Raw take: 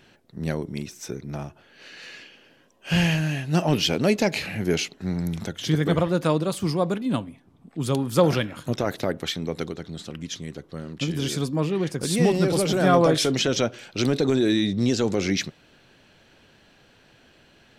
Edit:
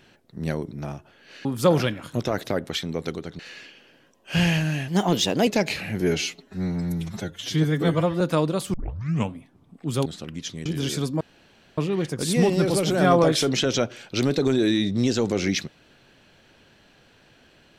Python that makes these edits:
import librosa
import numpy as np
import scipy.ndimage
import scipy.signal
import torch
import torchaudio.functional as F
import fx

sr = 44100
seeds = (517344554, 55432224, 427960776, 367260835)

y = fx.edit(x, sr, fx.cut(start_s=0.71, length_s=0.51),
    fx.speed_span(start_s=3.45, length_s=0.68, speed=1.15),
    fx.stretch_span(start_s=4.66, length_s=1.47, factor=1.5),
    fx.tape_start(start_s=6.66, length_s=0.59),
    fx.move(start_s=7.98, length_s=1.94, to_s=1.96),
    fx.cut(start_s=10.52, length_s=0.53),
    fx.insert_room_tone(at_s=11.6, length_s=0.57), tone=tone)